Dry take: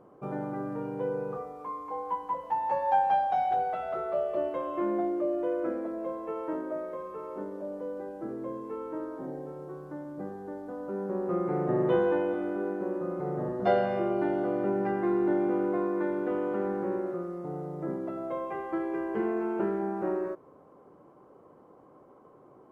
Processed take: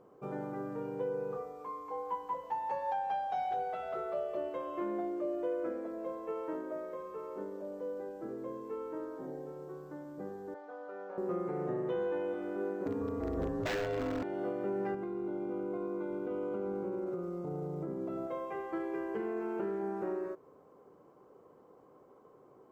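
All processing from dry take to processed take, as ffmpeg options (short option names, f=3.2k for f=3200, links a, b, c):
-filter_complex "[0:a]asettb=1/sr,asplit=3[a][b][c];[a]atrim=end=10.544[d];[b]atrim=start=10.54:end=11.18,asetpts=PTS-STARTPTS,afade=t=in:d=0.004:c=qsin,afade=t=out:st=0.636:d=0.004:c=qsin,highpass=670,lowpass=3.3k,aecho=1:1:6.7:0.97,atrim=end_sample=28224[e];[c]atrim=start=11.176[f];[d][e]acrossfade=d=0.004:c1=hsin:c2=qsin[g];[g][f]acrossfade=d=0.004:c1=qsin:c2=hsin,asettb=1/sr,asplit=3[h][i][j];[h]atrim=end=12.864[k];[i]atrim=start=12.86:end=14.23,asetpts=PTS-STARTPTS,afade=t=in:d=0.004:c=qsin,afade=t=out:st=1.366:d=0.004:c=qsin,acontrast=80,aeval=exprs='0.141*(abs(mod(val(0)/0.141+3,4)-2)-1)':c=same,afreqshift=-87[l];[j]atrim=start=14.226[m];[k][l]acrossfade=d=0.004:c1=hsin:c2=qsin[n];[n][m]acrossfade=d=0.004:c1=qsin:c2=hsin,asettb=1/sr,asplit=3[o][p][q];[o]atrim=end=14.944[r];[p]atrim=start=14.94:end=18.27,asetpts=PTS-STARTPTS,afade=t=in:d=0.004:c=qsin,afade=t=out:st=3.326:d=0.004:c=qsin,lowshelf=f=350:g=8,acompressor=threshold=-28dB:ratio=12:attack=3.2:release=140:knee=1:detection=peak,asuperstop=centerf=1800:order=4:qfactor=4.9[s];[q]atrim=start=18.266[t];[r][s]acrossfade=d=0.004:c1=hsin:c2=qsin[u];[u][t]acrossfade=d=0.004:c1=qsin:c2=hsin,superequalizer=7b=1.58:16b=0.398,alimiter=limit=-21dB:level=0:latency=1:release=321,highshelf=f=2.9k:g=8.5,volume=-6dB"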